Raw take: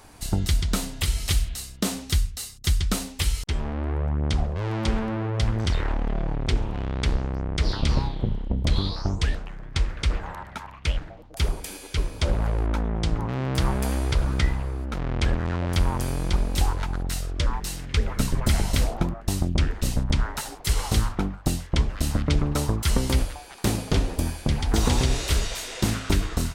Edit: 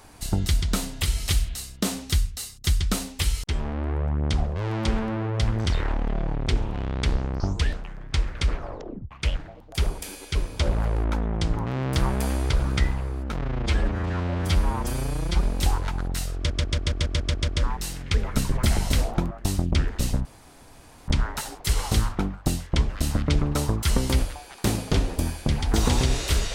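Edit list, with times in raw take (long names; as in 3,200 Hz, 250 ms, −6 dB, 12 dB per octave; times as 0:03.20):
0:07.40–0:09.02: remove
0:10.11: tape stop 0.62 s
0:15.04–0:16.38: time-stretch 1.5×
0:17.31: stutter 0.14 s, 9 plays
0:20.08: splice in room tone 0.83 s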